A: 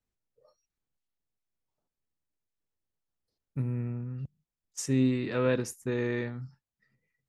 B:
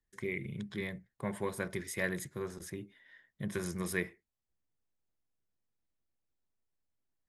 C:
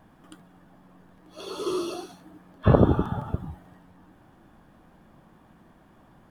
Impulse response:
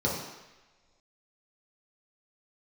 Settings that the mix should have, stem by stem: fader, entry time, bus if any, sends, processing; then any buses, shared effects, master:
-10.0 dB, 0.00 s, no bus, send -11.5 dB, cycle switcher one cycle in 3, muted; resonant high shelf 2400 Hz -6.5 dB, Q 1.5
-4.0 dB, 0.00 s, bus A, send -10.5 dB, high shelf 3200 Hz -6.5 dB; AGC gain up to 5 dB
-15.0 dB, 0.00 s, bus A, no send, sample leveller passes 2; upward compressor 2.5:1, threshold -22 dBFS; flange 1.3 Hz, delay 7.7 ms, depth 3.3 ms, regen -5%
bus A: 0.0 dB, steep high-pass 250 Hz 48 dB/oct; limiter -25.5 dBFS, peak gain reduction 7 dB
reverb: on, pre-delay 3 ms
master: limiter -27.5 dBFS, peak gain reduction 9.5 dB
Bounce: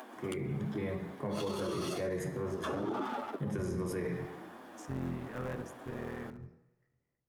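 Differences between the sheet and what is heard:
stem A: send -11.5 dB -> -20 dB; stem C -15.0 dB -> -4.0 dB

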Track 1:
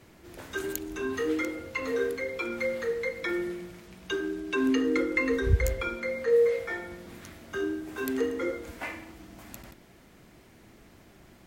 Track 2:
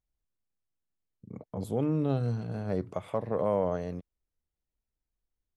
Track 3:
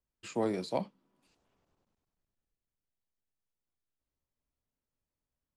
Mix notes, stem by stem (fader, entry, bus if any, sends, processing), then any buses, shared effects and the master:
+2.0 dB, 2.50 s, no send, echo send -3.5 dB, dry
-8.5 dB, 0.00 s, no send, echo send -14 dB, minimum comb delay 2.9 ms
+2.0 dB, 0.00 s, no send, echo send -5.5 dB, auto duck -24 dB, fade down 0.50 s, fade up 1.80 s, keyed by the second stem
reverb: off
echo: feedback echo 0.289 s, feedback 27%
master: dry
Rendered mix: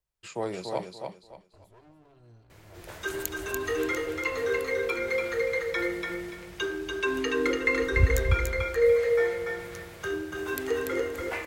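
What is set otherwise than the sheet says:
stem 2 -8.5 dB -> -18.5 dB; master: extra bell 250 Hz -13 dB 0.63 oct

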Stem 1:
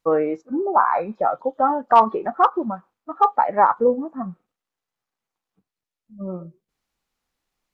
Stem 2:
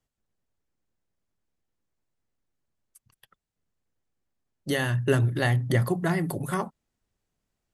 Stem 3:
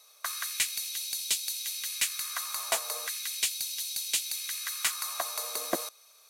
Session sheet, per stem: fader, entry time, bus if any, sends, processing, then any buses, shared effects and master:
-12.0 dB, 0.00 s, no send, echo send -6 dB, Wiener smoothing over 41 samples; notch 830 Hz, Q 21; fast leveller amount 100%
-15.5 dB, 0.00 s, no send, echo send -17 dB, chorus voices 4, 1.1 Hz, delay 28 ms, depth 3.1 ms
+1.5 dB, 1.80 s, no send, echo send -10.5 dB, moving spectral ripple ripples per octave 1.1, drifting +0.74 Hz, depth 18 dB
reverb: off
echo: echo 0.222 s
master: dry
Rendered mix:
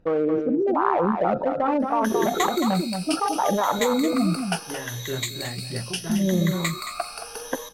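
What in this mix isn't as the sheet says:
stem 2 -15.5 dB -> -5.0 dB; master: extra LPF 2600 Hz 6 dB/oct

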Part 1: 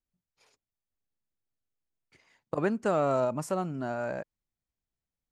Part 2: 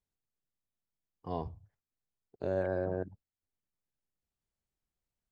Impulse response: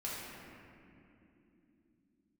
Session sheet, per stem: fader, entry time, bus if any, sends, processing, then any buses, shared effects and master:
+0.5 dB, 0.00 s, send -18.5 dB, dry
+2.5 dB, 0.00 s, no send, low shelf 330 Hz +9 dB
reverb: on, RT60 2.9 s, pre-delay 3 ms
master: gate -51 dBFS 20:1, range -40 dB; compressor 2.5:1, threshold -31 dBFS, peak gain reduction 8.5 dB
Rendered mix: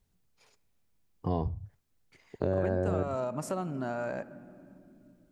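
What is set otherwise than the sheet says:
stem 2 +2.5 dB -> +10.5 dB; master: missing gate -51 dBFS 20:1, range -40 dB

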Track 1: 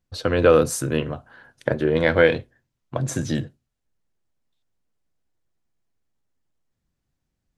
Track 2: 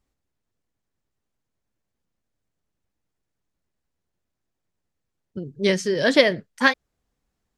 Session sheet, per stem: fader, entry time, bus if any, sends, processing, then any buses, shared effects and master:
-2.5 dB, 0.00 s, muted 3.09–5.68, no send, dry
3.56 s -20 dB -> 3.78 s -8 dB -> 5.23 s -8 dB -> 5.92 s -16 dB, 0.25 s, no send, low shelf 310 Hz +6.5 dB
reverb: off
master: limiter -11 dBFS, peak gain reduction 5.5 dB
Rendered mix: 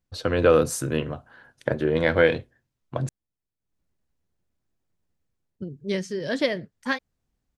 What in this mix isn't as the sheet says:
stem 2 -20.0 dB -> -13.5 dB; master: missing limiter -11 dBFS, peak gain reduction 5.5 dB

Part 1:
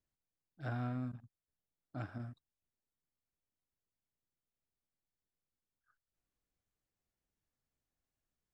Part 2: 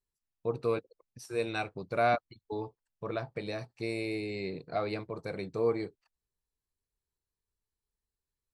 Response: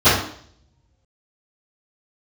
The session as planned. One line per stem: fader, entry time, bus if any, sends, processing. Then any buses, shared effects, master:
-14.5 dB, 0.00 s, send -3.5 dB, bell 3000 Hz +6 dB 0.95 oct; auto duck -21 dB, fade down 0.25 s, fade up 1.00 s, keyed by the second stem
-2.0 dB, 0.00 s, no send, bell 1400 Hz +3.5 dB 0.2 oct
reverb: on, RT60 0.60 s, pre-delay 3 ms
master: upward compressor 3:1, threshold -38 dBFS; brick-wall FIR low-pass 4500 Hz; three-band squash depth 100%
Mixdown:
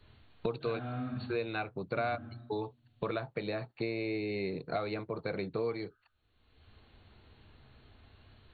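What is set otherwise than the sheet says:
stem 1 -14.5 dB -> -23.5 dB; master: missing upward compressor 3:1, threshold -38 dBFS

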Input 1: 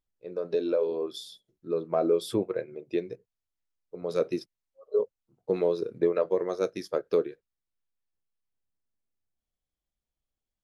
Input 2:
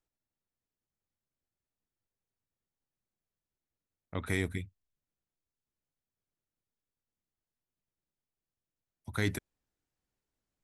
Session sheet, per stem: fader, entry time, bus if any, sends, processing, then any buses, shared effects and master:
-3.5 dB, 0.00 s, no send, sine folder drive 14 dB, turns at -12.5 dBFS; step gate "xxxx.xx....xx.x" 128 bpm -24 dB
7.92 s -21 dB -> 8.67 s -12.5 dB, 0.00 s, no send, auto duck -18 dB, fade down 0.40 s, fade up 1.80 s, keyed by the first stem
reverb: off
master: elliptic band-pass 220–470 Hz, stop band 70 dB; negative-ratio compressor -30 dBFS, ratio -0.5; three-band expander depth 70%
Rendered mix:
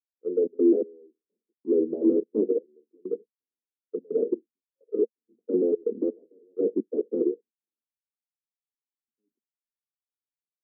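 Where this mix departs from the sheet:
stem 2 -21.0 dB -> -31.0 dB; master: missing negative-ratio compressor -30 dBFS, ratio -0.5

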